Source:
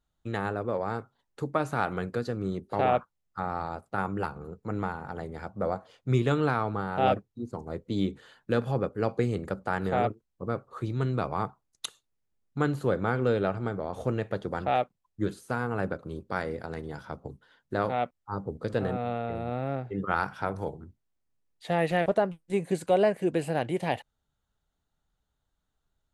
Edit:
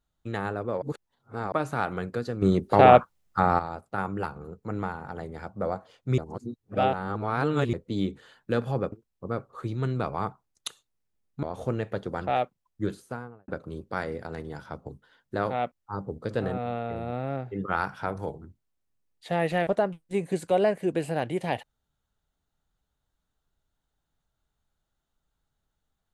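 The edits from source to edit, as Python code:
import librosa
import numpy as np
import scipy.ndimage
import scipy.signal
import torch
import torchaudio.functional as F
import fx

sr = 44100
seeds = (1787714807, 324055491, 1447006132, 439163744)

y = fx.studio_fade_out(x, sr, start_s=15.28, length_s=0.59)
y = fx.edit(y, sr, fx.reverse_span(start_s=0.82, length_s=0.7),
    fx.clip_gain(start_s=2.42, length_s=1.17, db=10.0),
    fx.reverse_span(start_s=6.18, length_s=1.55),
    fx.cut(start_s=8.92, length_s=1.18),
    fx.cut(start_s=12.61, length_s=1.21), tone=tone)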